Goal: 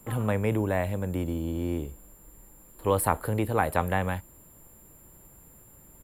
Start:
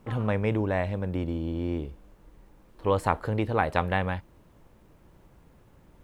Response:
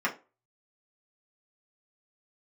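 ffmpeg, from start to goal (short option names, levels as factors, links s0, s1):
-filter_complex "[0:a]acrossover=split=230|810|2000[s0][s1][s2][s3];[s3]alimiter=level_in=2:limit=0.0631:level=0:latency=1:release=46,volume=0.501[s4];[s0][s1][s2][s4]amix=inputs=4:normalize=0,aexciter=amount=15.1:drive=5.7:freq=9300,aeval=exprs='val(0)+0.00126*sin(2*PI*7300*n/s)':c=same,aresample=32000,aresample=44100"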